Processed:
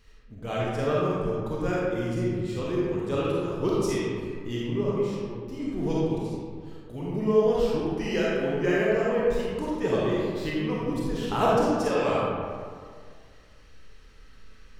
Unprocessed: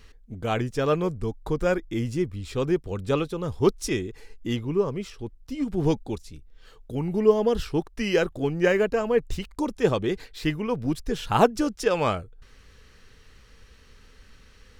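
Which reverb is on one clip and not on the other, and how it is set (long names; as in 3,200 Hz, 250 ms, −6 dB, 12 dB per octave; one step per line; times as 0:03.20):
comb and all-pass reverb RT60 2 s, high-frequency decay 0.5×, pre-delay 5 ms, DRR −6.5 dB
level −8.5 dB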